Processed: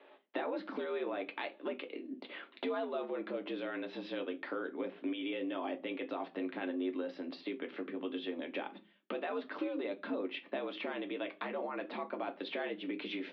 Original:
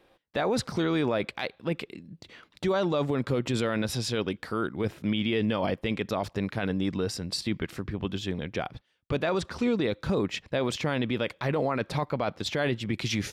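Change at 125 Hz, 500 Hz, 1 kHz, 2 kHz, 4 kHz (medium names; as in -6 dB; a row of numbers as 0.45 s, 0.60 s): under -25 dB, -9.0 dB, -8.5 dB, -8.5 dB, -12.0 dB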